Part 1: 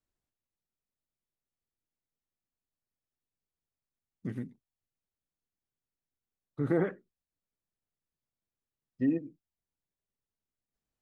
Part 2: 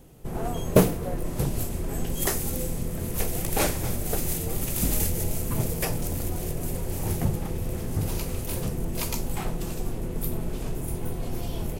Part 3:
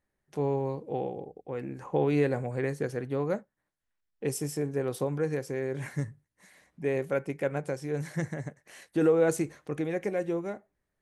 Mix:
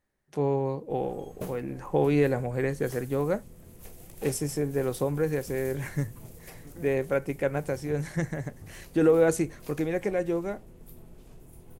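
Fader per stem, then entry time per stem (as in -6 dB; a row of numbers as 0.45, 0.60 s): -20.0, -19.5, +2.5 dB; 0.05, 0.65, 0.00 s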